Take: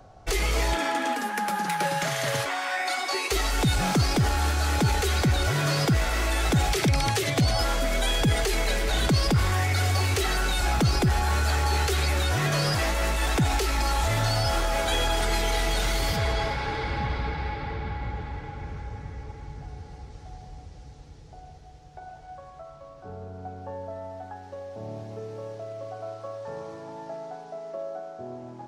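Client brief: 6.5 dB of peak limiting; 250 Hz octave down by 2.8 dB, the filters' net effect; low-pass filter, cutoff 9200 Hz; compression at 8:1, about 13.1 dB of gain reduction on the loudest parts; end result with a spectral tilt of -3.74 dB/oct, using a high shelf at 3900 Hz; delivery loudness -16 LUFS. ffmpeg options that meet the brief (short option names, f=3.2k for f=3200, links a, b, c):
-af "lowpass=9.2k,equalizer=f=250:t=o:g=-4.5,highshelf=f=3.9k:g=5,acompressor=threshold=-33dB:ratio=8,volume=22dB,alimiter=limit=-6.5dB:level=0:latency=1"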